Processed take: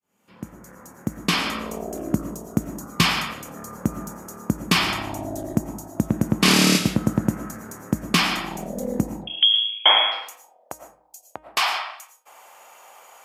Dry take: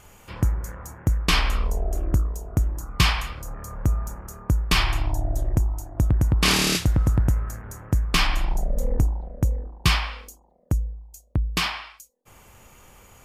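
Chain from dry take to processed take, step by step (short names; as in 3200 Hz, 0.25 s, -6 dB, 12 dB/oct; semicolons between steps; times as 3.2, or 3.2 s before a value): opening faded in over 1.79 s; de-hum 309.8 Hz, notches 11; 9.27–10.12 inverted band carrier 3300 Hz; reverb RT60 0.40 s, pre-delay 70 ms, DRR 7.5 dB; high-pass sweep 210 Hz -> 730 Hz, 9.27–9.8; gain +2 dB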